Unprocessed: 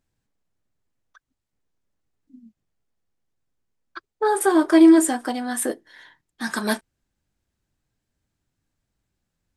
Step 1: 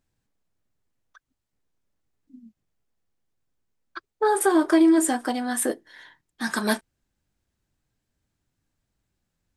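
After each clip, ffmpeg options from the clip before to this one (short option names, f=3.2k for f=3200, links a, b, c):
-af "acompressor=threshold=-14dB:ratio=6"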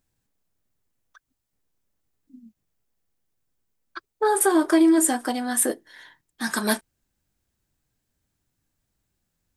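-af "highshelf=f=8.6k:g=9.5"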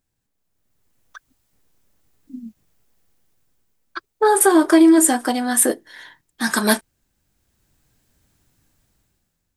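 -af "dynaudnorm=f=170:g=9:m=14dB,volume=-1dB"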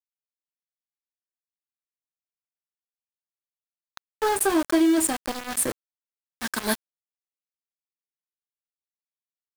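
-af "aeval=exprs='val(0)*gte(abs(val(0)),0.133)':c=same,volume=-8dB"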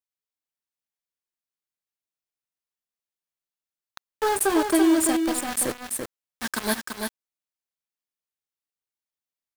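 -af "aecho=1:1:337:0.531"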